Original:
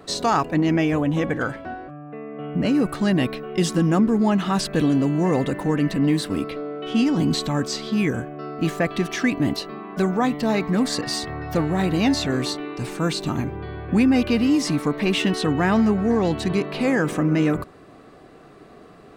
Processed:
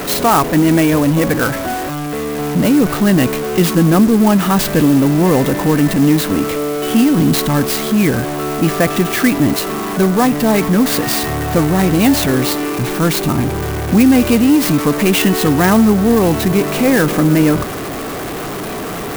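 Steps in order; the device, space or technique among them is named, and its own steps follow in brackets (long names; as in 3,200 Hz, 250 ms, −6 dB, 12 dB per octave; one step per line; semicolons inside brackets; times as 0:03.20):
early CD player with a faulty converter (converter with a step at zero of −25 dBFS; converter with an unsteady clock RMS 0.046 ms)
level +6.5 dB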